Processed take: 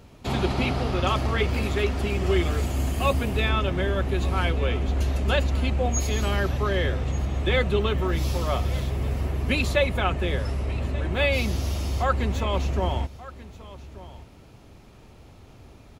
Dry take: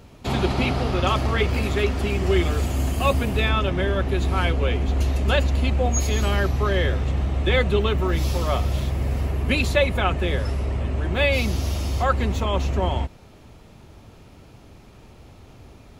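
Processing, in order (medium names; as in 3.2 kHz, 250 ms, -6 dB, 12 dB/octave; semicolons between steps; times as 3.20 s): delay 1183 ms -18 dB; trim -2.5 dB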